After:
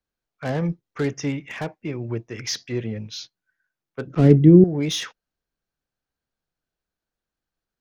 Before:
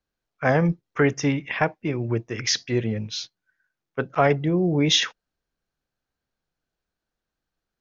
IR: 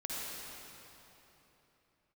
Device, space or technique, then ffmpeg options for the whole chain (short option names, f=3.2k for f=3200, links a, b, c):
one-band saturation: -filter_complex "[0:a]acrossover=split=470|4700[a][b][c];[b]asoftclip=type=tanh:threshold=-26.5dB[d];[a][d][c]amix=inputs=3:normalize=0,asettb=1/sr,asplit=3[e][f][g];[e]atrim=end=4.074[h];[f]atrim=start=4.07:end=4.64,asetpts=PTS-STARTPTS,afade=t=in:d=0.004:c=qsin,afade=t=out:st=0.566:d=0.004:c=qsin,lowshelf=f=480:t=q:w=1.5:g=13.5[i];[g]atrim=start=4.636[j];[h][i]acrossfade=d=0.004:c1=hsin:c2=qsin[k];[k][j]acrossfade=d=0.004:c1=qsin:c2=hsin,volume=-3dB"